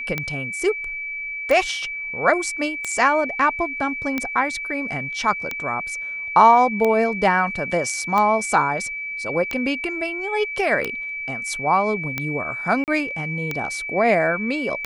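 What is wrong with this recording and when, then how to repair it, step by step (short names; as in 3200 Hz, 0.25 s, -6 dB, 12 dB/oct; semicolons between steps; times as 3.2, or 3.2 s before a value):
tick 45 rpm -10 dBFS
tone 2300 Hz -27 dBFS
12.84–12.88 gap 38 ms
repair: de-click; notch 2300 Hz, Q 30; interpolate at 12.84, 38 ms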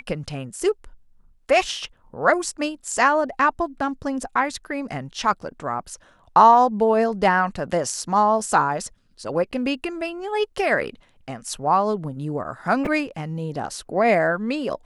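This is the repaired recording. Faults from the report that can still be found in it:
none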